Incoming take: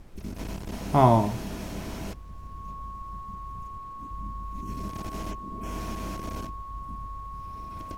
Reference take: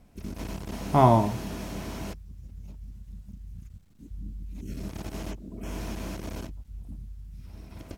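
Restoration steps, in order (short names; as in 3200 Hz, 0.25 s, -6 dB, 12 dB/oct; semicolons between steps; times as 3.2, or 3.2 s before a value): notch 1100 Hz, Q 30; noise print and reduce 6 dB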